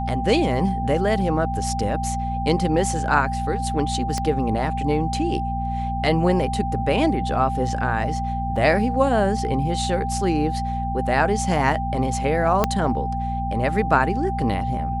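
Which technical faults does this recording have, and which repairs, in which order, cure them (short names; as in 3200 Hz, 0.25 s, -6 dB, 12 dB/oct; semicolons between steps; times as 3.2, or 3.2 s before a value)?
hum 60 Hz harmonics 4 -27 dBFS
tone 790 Hz -26 dBFS
4.18 pop -13 dBFS
8.56 gap 4 ms
12.64 pop -4 dBFS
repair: de-click; de-hum 60 Hz, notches 4; notch 790 Hz, Q 30; interpolate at 8.56, 4 ms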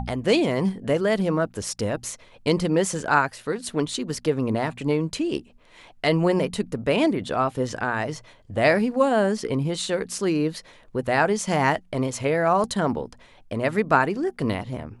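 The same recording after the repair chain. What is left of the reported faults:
4.18 pop
12.64 pop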